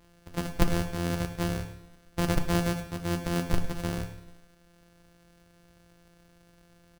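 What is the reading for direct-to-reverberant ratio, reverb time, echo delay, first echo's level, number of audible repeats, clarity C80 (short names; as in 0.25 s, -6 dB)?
6.5 dB, 0.85 s, 0.104 s, -16.5 dB, 1, 11.5 dB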